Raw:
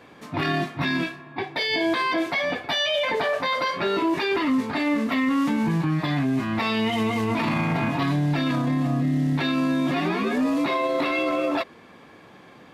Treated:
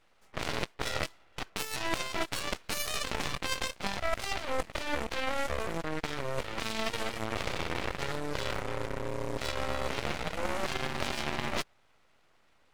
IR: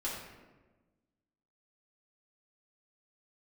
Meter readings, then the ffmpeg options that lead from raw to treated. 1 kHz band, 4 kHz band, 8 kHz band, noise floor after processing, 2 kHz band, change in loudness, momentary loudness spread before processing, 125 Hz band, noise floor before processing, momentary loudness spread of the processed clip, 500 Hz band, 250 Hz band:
−9.0 dB, −7.0 dB, can't be measured, −65 dBFS, −8.5 dB, −10.5 dB, 3 LU, −14.0 dB, −49 dBFS, 3 LU, −9.5 dB, −18.5 dB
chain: -af "equalizer=frequency=250:width_type=o:width=2.7:gain=5,aeval=exprs='0.316*(cos(1*acos(clip(val(0)/0.316,-1,1)))-cos(1*PI/2))+0.112*(cos(3*acos(clip(val(0)/0.316,-1,1)))-cos(3*PI/2))':channel_layout=same,areverse,acompressor=threshold=-33dB:ratio=5,areverse,equalizer=frequency=125:width_type=o:width=1:gain=-11,equalizer=frequency=500:width_type=o:width=1:gain=-6,equalizer=frequency=1000:width_type=o:width=1:gain=4,equalizer=frequency=8000:width_type=o:width=1:gain=7,aeval=exprs='abs(val(0))':channel_layout=same,volume=6.5dB"

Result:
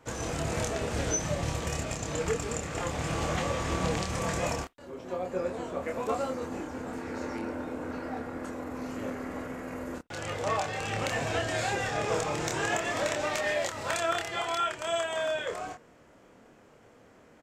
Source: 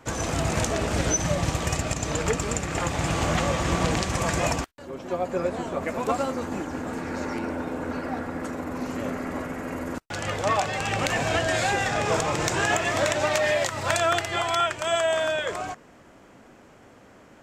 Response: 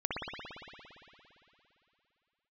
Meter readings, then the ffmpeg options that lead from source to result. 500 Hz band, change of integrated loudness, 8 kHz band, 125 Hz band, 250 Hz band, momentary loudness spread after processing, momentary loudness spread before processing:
−5.0 dB, −6.0 dB, −6.0 dB, −6.5 dB, −6.0 dB, 9 LU, 9 LU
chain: -filter_complex "[0:a]equalizer=frequency=470:width_type=o:width=0.24:gain=5.5,asplit=2[link_01][link_02];[link_02]adelay=27,volume=-4dB[link_03];[link_01][link_03]amix=inputs=2:normalize=0,asplit=2[link_04][link_05];[1:a]atrim=start_sample=2205,atrim=end_sample=4410[link_06];[link_05][link_06]afir=irnorm=-1:irlink=0,volume=-31dB[link_07];[link_04][link_07]amix=inputs=2:normalize=0,volume=-8dB"

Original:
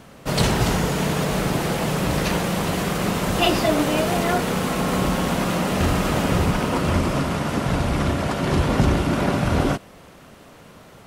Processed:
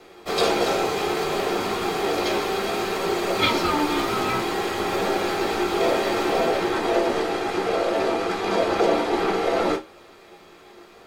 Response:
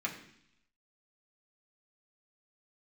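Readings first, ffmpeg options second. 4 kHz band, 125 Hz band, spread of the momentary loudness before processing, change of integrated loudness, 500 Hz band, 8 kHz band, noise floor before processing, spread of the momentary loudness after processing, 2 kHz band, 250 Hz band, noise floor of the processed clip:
0.0 dB, −16.5 dB, 3 LU, −1.5 dB, +2.0 dB, −5.5 dB, −46 dBFS, 4 LU, −0.5 dB, −4.5 dB, −48 dBFS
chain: -filter_complex "[0:a]aeval=exprs='val(0)*sin(2*PI*590*n/s)':channel_layout=same,flanger=delay=10:depth=5.9:regen=68:speed=0.59:shape=triangular[link_01];[1:a]atrim=start_sample=2205,atrim=end_sample=3969,asetrate=83790,aresample=44100[link_02];[link_01][link_02]afir=irnorm=-1:irlink=0,volume=8.5dB"

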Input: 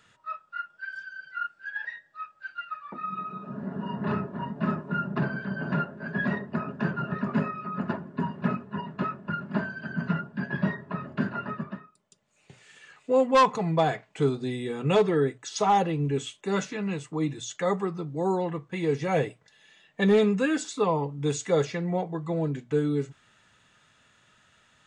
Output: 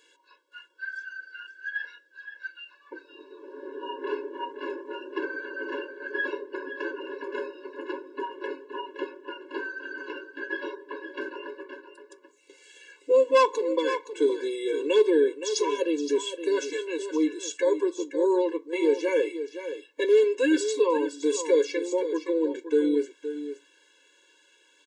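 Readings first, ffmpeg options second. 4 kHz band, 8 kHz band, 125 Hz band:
+2.0 dB, +2.5 dB, below −35 dB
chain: -filter_complex "[0:a]equalizer=frequency=1200:width=1.8:gain=-8,asplit=2[link_01][link_02];[link_02]alimiter=limit=-20.5dB:level=0:latency=1:release=95,volume=0dB[link_03];[link_01][link_03]amix=inputs=2:normalize=0,aecho=1:1:519:0.299,afftfilt=real='re*eq(mod(floor(b*sr/1024/290),2),1)':imag='im*eq(mod(floor(b*sr/1024/290),2),1)':win_size=1024:overlap=0.75"

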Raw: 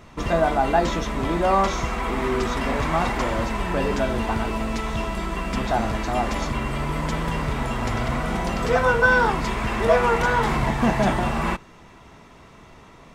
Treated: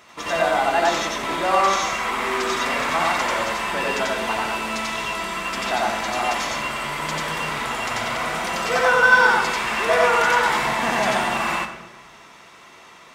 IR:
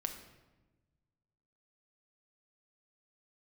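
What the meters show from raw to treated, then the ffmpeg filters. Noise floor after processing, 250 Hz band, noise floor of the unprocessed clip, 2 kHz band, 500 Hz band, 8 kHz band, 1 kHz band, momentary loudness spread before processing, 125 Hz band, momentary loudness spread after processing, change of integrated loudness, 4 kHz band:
−46 dBFS, −6.5 dB, −48 dBFS, +5.5 dB, 0.0 dB, +7.5 dB, +3.0 dB, 8 LU, −12.0 dB, 9 LU, +2.0 dB, +7.5 dB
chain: -filter_complex "[0:a]highpass=frequency=1400:poles=1,asplit=2[link_01][link_02];[1:a]atrim=start_sample=2205,adelay=90[link_03];[link_02][link_03]afir=irnorm=-1:irlink=0,volume=1dB[link_04];[link_01][link_04]amix=inputs=2:normalize=0,volume=4.5dB"

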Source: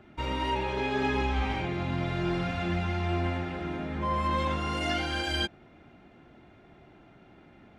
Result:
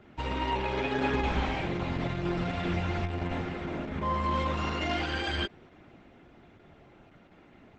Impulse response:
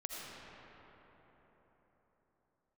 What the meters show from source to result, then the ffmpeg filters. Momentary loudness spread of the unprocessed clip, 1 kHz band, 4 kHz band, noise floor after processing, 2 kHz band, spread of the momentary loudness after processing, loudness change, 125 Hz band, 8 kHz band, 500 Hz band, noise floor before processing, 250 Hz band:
5 LU, −1.0 dB, −2.0 dB, −57 dBFS, −1.0 dB, 5 LU, −1.0 dB, −1.5 dB, −4.0 dB, −0.5 dB, −56 dBFS, −0.5 dB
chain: -filter_complex "[0:a]acrossover=split=4100[link_01][link_02];[link_02]acompressor=threshold=-50dB:ratio=4:attack=1:release=60[link_03];[link_01][link_03]amix=inputs=2:normalize=0" -ar 48000 -c:a libopus -b:a 10k

